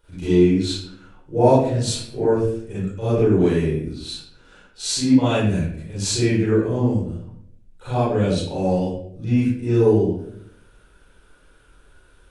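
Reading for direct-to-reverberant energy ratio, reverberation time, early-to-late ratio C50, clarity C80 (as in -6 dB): -12.0 dB, 0.70 s, -3.5 dB, 3.0 dB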